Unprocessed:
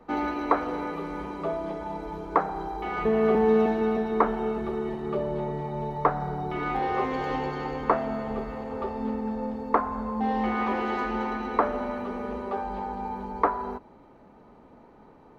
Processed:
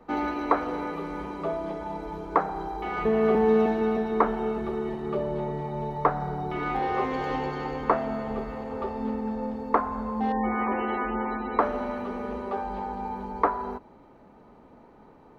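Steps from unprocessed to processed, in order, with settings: 10.32–11.59 spectral gate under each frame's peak -25 dB strong

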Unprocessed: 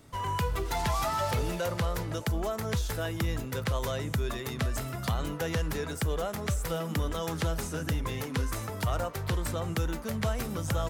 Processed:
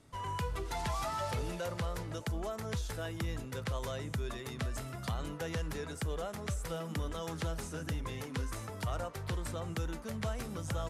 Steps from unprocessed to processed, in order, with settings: LPF 12000 Hz 24 dB/oct; gain -6.5 dB

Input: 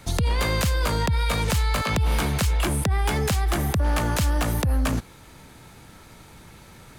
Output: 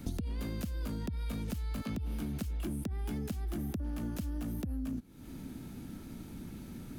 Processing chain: graphic EQ 125/250/500/1000/2000/4000/8000 Hz -3/+12/-7/-10/-8/-6/-8 dB; compressor 16:1, threshold -34 dBFS, peak gain reduction 19 dB; gain +1 dB

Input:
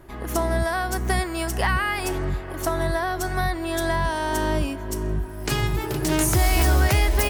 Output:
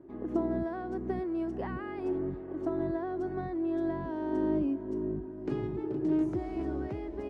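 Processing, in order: vocal rider 2 s; band-pass 300 Hz, Q 2.3; air absorption 50 m; gain -1 dB

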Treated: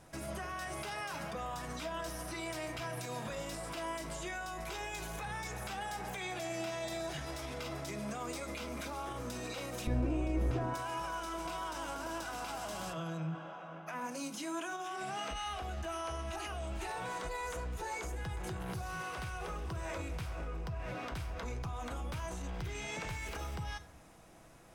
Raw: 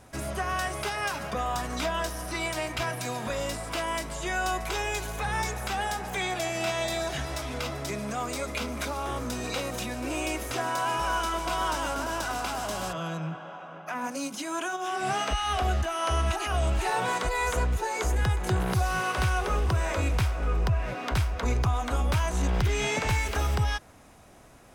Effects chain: resonator 160 Hz, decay 0.15 s, harmonics all, mix 50%; limiter -31 dBFS, peak gain reduction 11 dB; 9.87–10.74 tilt -4.5 dB/oct; reverb RT60 0.55 s, pre-delay 6 ms, DRR 10.5 dB; gain -1.5 dB

